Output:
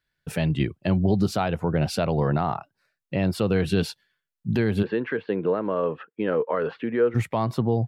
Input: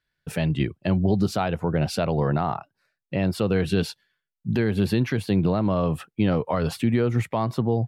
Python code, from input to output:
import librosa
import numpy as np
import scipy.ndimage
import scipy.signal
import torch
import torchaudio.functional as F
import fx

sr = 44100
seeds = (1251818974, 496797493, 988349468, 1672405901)

y = fx.cabinet(x, sr, low_hz=330.0, low_slope=12, high_hz=2600.0, hz=(460.0, 730.0, 1600.0, 2300.0), db=(8, -7, 5, -5), at=(4.82, 7.14), fade=0.02)